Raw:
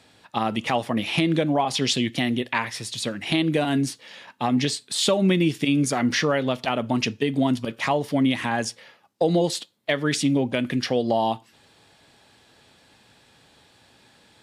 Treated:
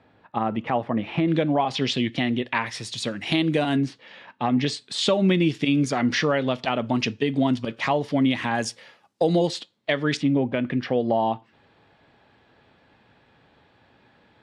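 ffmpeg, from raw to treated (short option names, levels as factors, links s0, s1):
-af "asetnsamples=n=441:p=0,asendcmd='1.28 lowpass f 3700;2.66 lowpass f 7200;3.76 lowpass f 2900;4.66 lowpass f 5200;8.55 lowpass f 10000;9.47 lowpass f 5000;10.17 lowpass f 2200',lowpass=1600"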